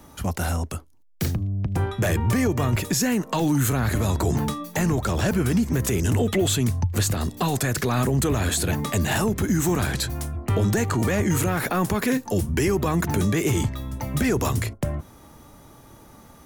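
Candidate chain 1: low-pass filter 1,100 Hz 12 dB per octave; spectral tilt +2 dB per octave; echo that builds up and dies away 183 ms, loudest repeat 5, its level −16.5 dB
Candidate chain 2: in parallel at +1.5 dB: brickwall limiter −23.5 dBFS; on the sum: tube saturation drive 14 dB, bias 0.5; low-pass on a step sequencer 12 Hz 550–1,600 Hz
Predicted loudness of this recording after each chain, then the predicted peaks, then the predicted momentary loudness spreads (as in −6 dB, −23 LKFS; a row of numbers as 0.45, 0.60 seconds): −28.0, −21.5 LKFS; −14.5, −6.5 dBFS; 9, 7 LU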